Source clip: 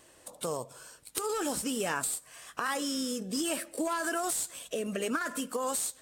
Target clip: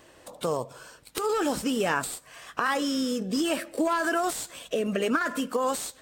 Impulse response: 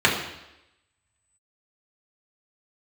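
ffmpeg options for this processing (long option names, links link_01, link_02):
-af "equalizer=frequency=10000:width=0.7:gain=-11.5,volume=6.5dB"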